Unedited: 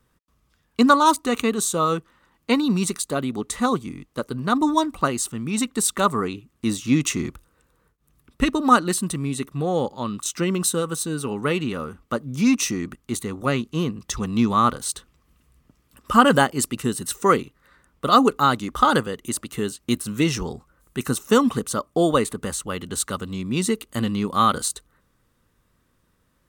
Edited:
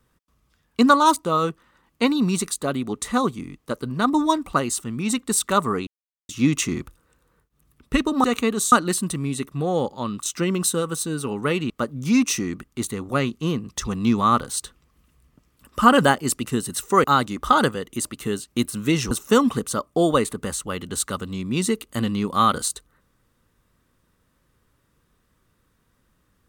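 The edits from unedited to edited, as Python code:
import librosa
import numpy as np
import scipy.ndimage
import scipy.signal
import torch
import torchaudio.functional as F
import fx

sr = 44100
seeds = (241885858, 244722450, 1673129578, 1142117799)

y = fx.edit(x, sr, fx.move(start_s=1.25, length_s=0.48, to_s=8.72),
    fx.silence(start_s=6.35, length_s=0.42),
    fx.cut(start_s=11.7, length_s=0.32),
    fx.cut(start_s=17.36, length_s=1.0),
    fx.cut(start_s=20.43, length_s=0.68), tone=tone)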